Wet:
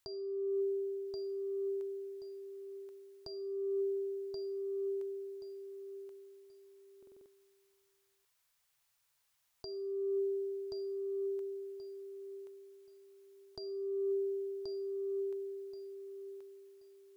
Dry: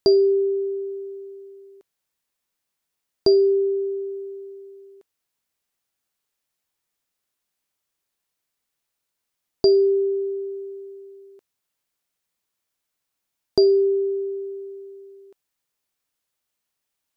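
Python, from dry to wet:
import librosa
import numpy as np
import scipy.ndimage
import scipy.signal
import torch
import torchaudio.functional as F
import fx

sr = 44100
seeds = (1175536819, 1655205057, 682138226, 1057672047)

y = fx.curve_eq(x, sr, hz=(130.0, 230.0, 950.0), db=(0, -15, 1))
y = fx.over_compress(y, sr, threshold_db=-33.0, ratio=-1.0)
y = fx.echo_feedback(y, sr, ms=1079, feedback_pct=24, wet_db=-4.0)
y = fx.buffer_glitch(y, sr, at_s=(6.98,), block=2048, repeats=5)
y = y * 10.0 ** (-3.5 / 20.0)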